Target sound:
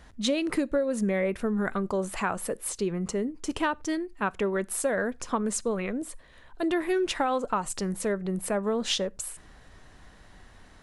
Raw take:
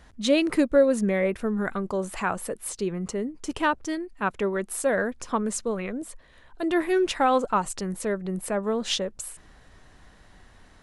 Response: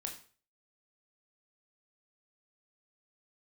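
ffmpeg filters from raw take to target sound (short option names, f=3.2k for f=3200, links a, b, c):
-filter_complex "[0:a]acompressor=threshold=-23dB:ratio=12,asplit=2[a][b];[1:a]atrim=start_sample=2205,afade=t=out:st=0.15:d=0.01,atrim=end_sample=7056[c];[b][c]afir=irnorm=-1:irlink=0,volume=-18dB[d];[a][d]amix=inputs=2:normalize=0"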